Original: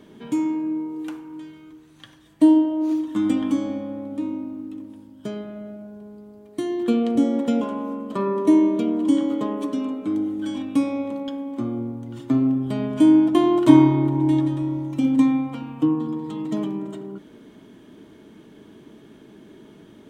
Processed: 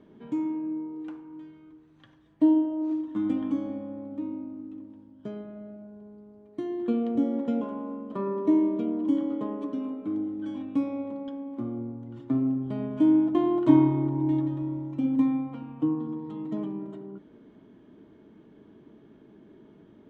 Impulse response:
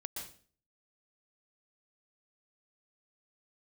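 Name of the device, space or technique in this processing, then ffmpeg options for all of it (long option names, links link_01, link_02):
through cloth: -af "lowpass=6400,highshelf=frequency=2600:gain=-15,volume=-6dB"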